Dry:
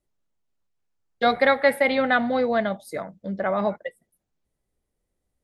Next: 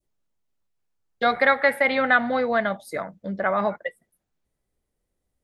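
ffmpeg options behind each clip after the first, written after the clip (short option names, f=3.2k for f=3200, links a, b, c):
-af "acompressor=threshold=-26dB:ratio=1.5,adynamicequalizer=threshold=0.0112:dfrequency=1500:dqfactor=0.81:tfrequency=1500:tqfactor=0.81:attack=5:release=100:ratio=0.375:range=4:mode=boostabove:tftype=bell"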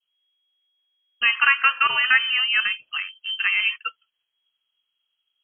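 -af "lowpass=f=2.8k:t=q:w=0.5098,lowpass=f=2.8k:t=q:w=0.6013,lowpass=f=2.8k:t=q:w=0.9,lowpass=f=2.8k:t=q:w=2.563,afreqshift=-3300,volume=1dB"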